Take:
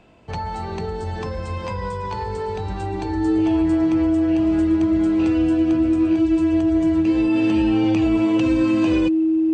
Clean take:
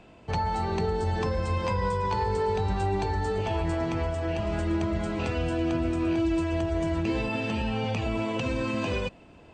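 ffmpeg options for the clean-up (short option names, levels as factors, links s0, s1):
-af "bandreject=f=320:w=30,asetnsamples=n=441:p=0,asendcmd='7.36 volume volume -3dB',volume=1"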